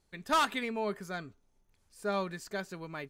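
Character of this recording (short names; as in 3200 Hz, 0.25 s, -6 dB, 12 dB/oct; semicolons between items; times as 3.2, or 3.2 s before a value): noise floor -73 dBFS; spectral tilt -4.0 dB/oct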